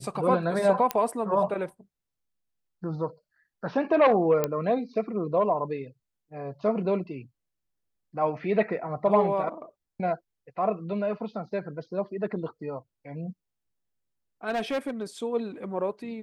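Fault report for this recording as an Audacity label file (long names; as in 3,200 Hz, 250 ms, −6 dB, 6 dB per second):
0.910000	0.910000	click −10 dBFS
4.440000	4.440000	click −11 dBFS
14.490000	15.030000	clipping −24.5 dBFS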